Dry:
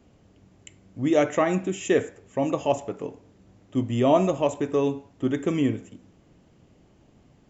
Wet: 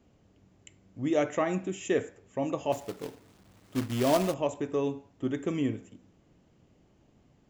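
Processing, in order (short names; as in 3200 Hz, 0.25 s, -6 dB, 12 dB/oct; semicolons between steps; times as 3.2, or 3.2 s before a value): 2.72–4.34 companded quantiser 4-bit; gain -6 dB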